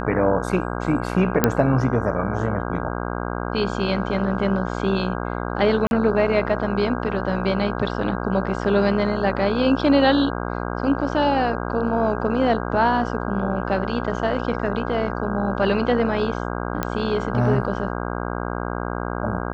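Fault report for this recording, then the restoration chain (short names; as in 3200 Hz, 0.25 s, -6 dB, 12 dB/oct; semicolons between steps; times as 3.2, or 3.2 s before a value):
buzz 60 Hz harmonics 27 -27 dBFS
1.44 pop -1 dBFS
5.87–5.91 gap 41 ms
16.83 pop -8 dBFS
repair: de-click; de-hum 60 Hz, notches 27; interpolate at 5.87, 41 ms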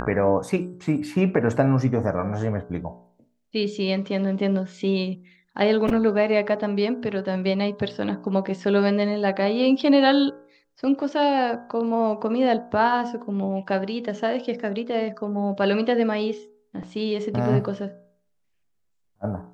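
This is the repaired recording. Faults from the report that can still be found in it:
none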